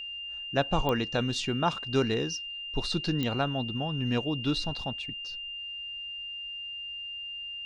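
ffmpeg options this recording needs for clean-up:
-af "adeclick=t=4,bandreject=f=2.8k:w=30"

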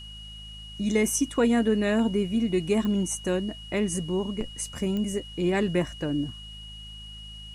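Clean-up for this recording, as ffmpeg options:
-af "adeclick=t=4,bandreject=f=53:t=h:w=4,bandreject=f=106:t=h:w=4,bandreject=f=159:t=h:w=4,bandreject=f=212:t=h:w=4,bandreject=f=2.9k:w=30,agate=range=-21dB:threshold=-34dB"

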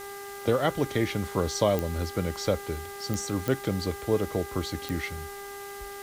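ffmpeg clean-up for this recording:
-af "adeclick=t=4,bandreject=f=400.5:t=h:w=4,bandreject=f=801:t=h:w=4,bandreject=f=1.2015k:t=h:w=4,bandreject=f=1.602k:t=h:w=4,bandreject=f=2.0025k:t=h:w=4,afwtdn=0.005"

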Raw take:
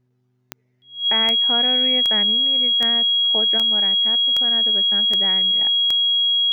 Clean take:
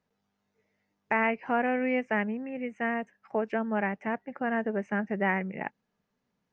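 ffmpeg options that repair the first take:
-af "adeclick=t=4,bandreject=f=125:t=h:w=4,bandreject=f=250:t=h:w=4,bandreject=f=375:t=h:w=4,bandreject=f=3.3k:w=30,asetnsamples=n=441:p=0,asendcmd='3.58 volume volume 4.5dB',volume=0dB"

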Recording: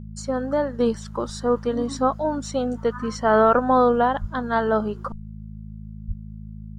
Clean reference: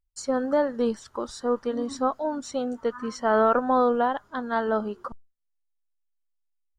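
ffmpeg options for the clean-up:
-filter_complex "[0:a]bandreject=f=53.3:t=h:w=4,bandreject=f=106.6:t=h:w=4,bandreject=f=159.9:t=h:w=4,bandreject=f=213.2:t=h:w=4,asplit=3[a][b][c];[a]afade=t=out:st=4.2:d=0.02[d];[b]highpass=f=140:w=0.5412,highpass=f=140:w=1.3066,afade=t=in:st=4.2:d=0.02,afade=t=out:st=4.32:d=0.02[e];[c]afade=t=in:st=4.32:d=0.02[f];[d][e][f]amix=inputs=3:normalize=0,asplit=3[g][h][i];[g]afade=t=out:st=6.07:d=0.02[j];[h]highpass=f=140:w=0.5412,highpass=f=140:w=1.3066,afade=t=in:st=6.07:d=0.02,afade=t=out:st=6.19:d=0.02[k];[i]afade=t=in:st=6.19:d=0.02[l];[j][k][l]amix=inputs=3:normalize=0,asetnsamples=n=441:p=0,asendcmd='0.8 volume volume -4dB',volume=0dB"

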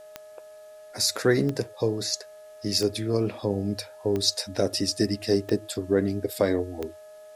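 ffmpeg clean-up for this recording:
-af "adeclick=t=4,bandreject=f=423.2:t=h:w=4,bandreject=f=846.4:t=h:w=4,bandreject=f=1.2696k:t=h:w=4,bandreject=f=1.6928k:t=h:w=4,bandreject=f=620:w=30,agate=range=-21dB:threshold=-39dB"

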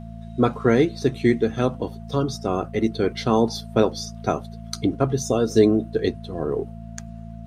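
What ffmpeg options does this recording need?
-af "bandreject=f=56:t=h:w=4,bandreject=f=112:t=h:w=4,bandreject=f=168:t=h:w=4,bandreject=f=224:t=h:w=4,bandreject=f=680:w=30"

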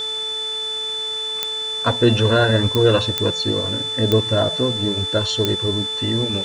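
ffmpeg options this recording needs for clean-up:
-af "adeclick=t=4,bandreject=f=437.2:t=h:w=4,bandreject=f=874.4:t=h:w=4,bandreject=f=1.3116k:t=h:w=4,bandreject=f=1.7488k:t=h:w=4,bandreject=f=3.5k:w=30,afwtdn=0.011"

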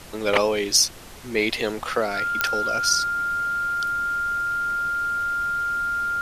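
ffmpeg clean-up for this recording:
-af "adeclick=t=4,bandreject=f=1.4k:w=30,afftdn=nr=30:nf=-34"

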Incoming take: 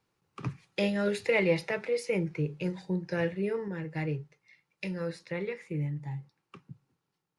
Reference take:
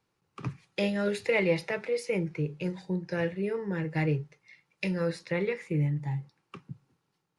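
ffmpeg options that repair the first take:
-af "asetnsamples=n=441:p=0,asendcmd='3.68 volume volume 5dB',volume=0dB"

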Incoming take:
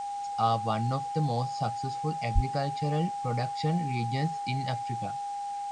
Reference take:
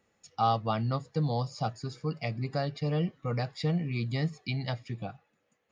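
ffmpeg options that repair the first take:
-filter_complex "[0:a]bandreject=f=810:w=30,asplit=3[a][b][c];[a]afade=t=out:st=2.34:d=0.02[d];[b]highpass=f=140:w=0.5412,highpass=f=140:w=1.3066,afade=t=in:st=2.34:d=0.02,afade=t=out:st=2.46:d=0.02[e];[c]afade=t=in:st=2.46:d=0.02[f];[d][e][f]amix=inputs=3:normalize=0,afwtdn=0.0028"

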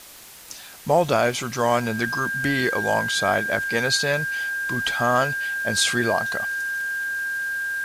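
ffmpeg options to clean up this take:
-af "adeclick=t=4,bandreject=f=1.6k:w=30,afwtdn=0.0071"

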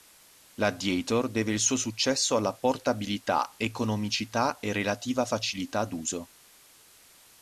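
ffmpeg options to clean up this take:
-af "adeclick=t=4,afwtdn=0.002"

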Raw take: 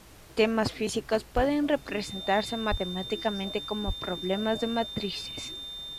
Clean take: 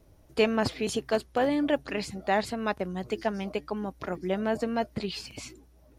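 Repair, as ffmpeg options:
-filter_complex "[0:a]bandreject=f=3.6k:w=30,asplit=3[a][b][c];[a]afade=t=out:st=1.35:d=0.02[d];[b]highpass=f=140:w=0.5412,highpass=f=140:w=1.3066,afade=t=in:st=1.35:d=0.02,afade=t=out:st=1.47:d=0.02[e];[c]afade=t=in:st=1.47:d=0.02[f];[d][e][f]amix=inputs=3:normalize=0,asplit=3[g][h][i];[g]afade=t=out:st=2.7:d=0.02[j];[h]highpass=f=140:w=0.5412,highpass=f=140:w=1.3066,afade=t=in:st=2.7:d=0.02,afade=t=out:st=2.82:d=0.02[k];[i]afade=t=in:st=2.82:d=0.02[l];[j][k][l]amix=inputs=3:normalize=0,asplit=3[m][n][o];[m]afade=t=out:st=3.86:d=0.02[p];[n]highpass=f=140:w=0.5412,highpass=f=140:w=1.3066,afade=t=in:st=3.86:d=0.02,afade=t=out:st=3.98:d=0.02[q];[o]afade=t=in:st=3.98:d=0.02[r];[p][q][r]amix=inputs=3:normalize=0,afftdn=nr=10:nf=-47"

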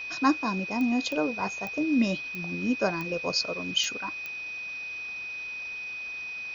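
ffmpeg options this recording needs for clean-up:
-af "adeclick=t=4,bandreject=f=2.5k:w=30,afwtdn=0.005"

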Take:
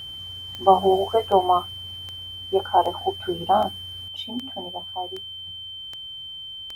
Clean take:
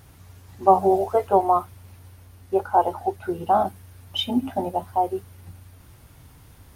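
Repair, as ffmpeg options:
-af "adeclick=t=4,bandreject=f=3.1k:w=30,asetnsamples=n=441:p=0,asendcmd='4.08 volume volume 9.5dB',volume=0dB"

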